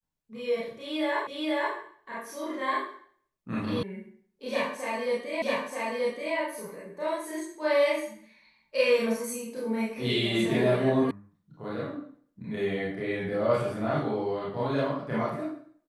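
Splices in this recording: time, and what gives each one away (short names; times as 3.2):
1.27 repeat of the last 0.48 s
3.83 sound cut off
5.42 repeat of the last 0.93 s
11.11 sound cut off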